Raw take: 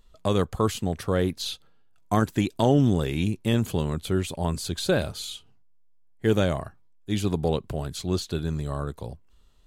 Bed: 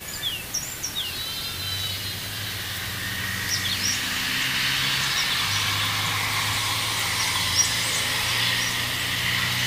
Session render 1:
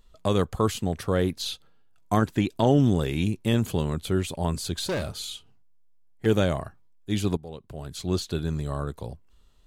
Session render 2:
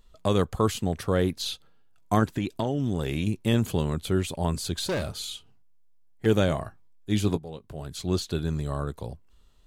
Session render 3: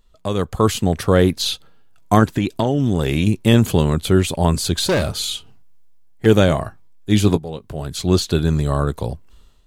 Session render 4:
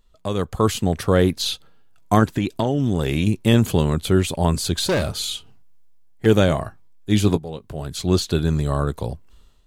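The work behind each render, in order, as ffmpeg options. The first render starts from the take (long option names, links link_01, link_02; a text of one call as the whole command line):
ffmpeg -i in.wav -filter_complex "[0:a]asettb=1/sr,asplit=3[link_01][link_02][link_03];[link_01]atrim=end=2.184[link_04];[link_02]atrim=start=2.18:end=2.67,asetpts=PTS-STARTPTS,afade=type=in:duration=0.004:curve=qsin,afade=type=out:start_time=0.486:duration=0.004:curve=qsin,acrossover=split=4700[link_05][link_06];[link_06]acompressor=threshold=-49dB:ratio=4:attack=1:release=60[link_07];[link_05][link_07]amix=inputs=2:normalize=0[link_08];[link_03]atrim=start=2.666[link_09];[link_04][link_08]acrossfade=duration=0.004:curve1=hsin:curve2=qsin[link_10];[link_10][link_09]acrossfade=duration=0.004:curve1=qsin:curve2=hsin,asettb=1/sr,asplit=3[link_11][link_12][link_13];[link_11]atrim=end=4.824[link_14];[link_12]atrim=start=4.82:end=6.26,asetpts=PTS-STARTPTS,afade=type=in:duration=0.004:curve=qsin,afade=type=out:start_time=1.436:duration=0.004:curve=qsin,asoftclip=type=hard:threshold=-24.5dB[link_15];[link_13]atrim=start=6.256[link_16];[link_14][link_15]acrossfade=duration=0.004:curve1=hsin:curve2=qsin[link_17];[link_17][link_16]acrossfade=duration=0.004:curve1=qsin:curve2=hsin,asplit=2[link_18][link_19];[link_18]atrim=end=7.37,asetpts=PTS-STARTPTS,afade=type=out:start_time=7.366:duration=0.004:curve=hsin:silence=0.141254[link_20];[link_19]atrim=start=7.37,asetpts=PTS-STARTPTS,afade=type=in:duration=0.71:curve=qua:silence=0.141254[link_21];[link_20][link_21]concat=n=2:v=0:a=1" out.wav
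ffmpeg -i in.wav -filter_complex "[0:a]asettb=1/sr,asplit=3[link_01][link_02][link_03];[link_01]atrim=end=2.274[link_04];[link_02]atrim=start=2.27:end=3.27,asetpts=PTS-STARTPTS,afade=type=in:duration=0.004:curve=qsin,afade=type=out:start_time=0.996:duration=0.004:curve=qsin,acompressor=threshold=-22dB:ratio=12:attack=3.2:release=140:knee=1:detection=peak[link_05];[link_03]atrim=start=3.266[link_06];[link_04][link_05]acrossfade=duration=0.004:curve1=hsin:curve2=qsin[link_07];[link_07][link_06]acrossfade=duration=0.004:curve1=qsin:curve2=hsin,asettb=1/sr,asplit=3[link_08][link_09][link_10];[link_08]atrim=end=6.464[link_11];[link_09]atrim=start=6.46:end=7.82,asetpts=PTS-STARTPTS,afade=type=in:duration=0.004:curve=qsin,afade=type=out:start_time=1.356:duration=0.004:curve=qsin,asplit=2[link_12][link_13];[link_13]adelay=19,volume=-11dB[link_14];[link_12][link_14]amix=inputs=2:normalize=0,atrim=end_sample=59976[link_15];[link_10]atrim=start=7.816[link_16];[link_11][link_15]acrossfade=duration=0.004:curve1=hsin:curve2=qsin[link_17];[link_17][link_16]acrossfade=duration=0.004:curve1=qsin:curve2=hsin" out.wav
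ffmpeg -i in.wav -af "dynaudnorm=framelen=360:gausssize=3:maxgain=13dB" out.wav
ffmpeg -i in.wav -af "volume=-2.5dB" out.wav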